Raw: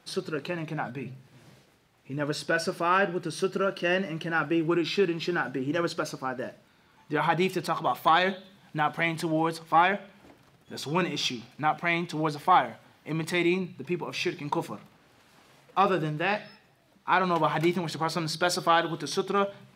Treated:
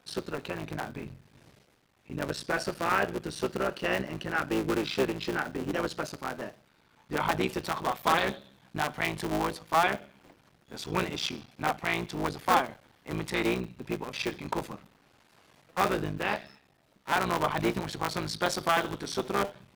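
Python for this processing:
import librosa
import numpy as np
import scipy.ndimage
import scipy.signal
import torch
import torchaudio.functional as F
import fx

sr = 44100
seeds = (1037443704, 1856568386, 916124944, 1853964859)

y = fx.cycle_switch(x, sr, every=3, mode='muted')
y = y * librosa.db_to_amplitude(-1.5)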